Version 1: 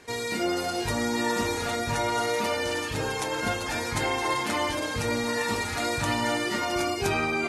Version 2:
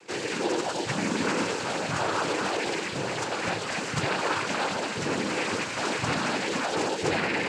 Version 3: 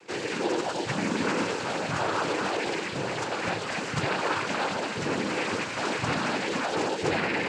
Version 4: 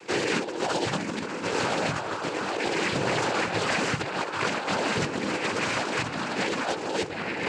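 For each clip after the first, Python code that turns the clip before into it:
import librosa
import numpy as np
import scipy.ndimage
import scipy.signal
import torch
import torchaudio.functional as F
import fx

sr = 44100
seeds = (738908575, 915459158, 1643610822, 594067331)

y1 = fx.noise_vocoder(x, sr, seeds[0], bands=8)
y2 = fx.high_shelf(y1, sr, hz=6500.0, db=-7.0)
y3 = fx.over_compress(y2, sr, threshold_db=-31.0, ratio=-0.5)
y3 = F.gain(torch.from_numpy(y3), 3.5).numpy()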